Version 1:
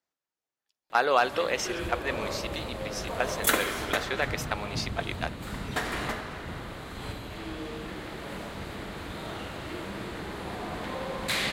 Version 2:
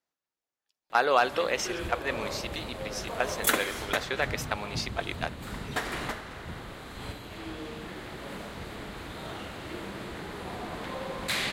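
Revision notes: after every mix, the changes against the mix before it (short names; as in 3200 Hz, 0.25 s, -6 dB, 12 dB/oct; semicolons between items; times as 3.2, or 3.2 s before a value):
background: send -9.0 dB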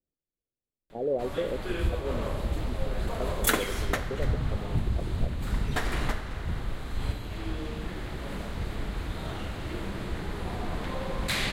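speech: add steep low-pass 550 Hz 36 dB/oct; master: remove HPF 260 Hz 6 dB/oct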